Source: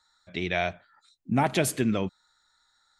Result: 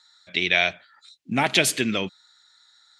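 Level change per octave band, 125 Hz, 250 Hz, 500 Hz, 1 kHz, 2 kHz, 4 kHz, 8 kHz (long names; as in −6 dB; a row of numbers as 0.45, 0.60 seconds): −3.5, −0.5, +1.0, +1.5, +10.0, +13.0, +6.5 decibels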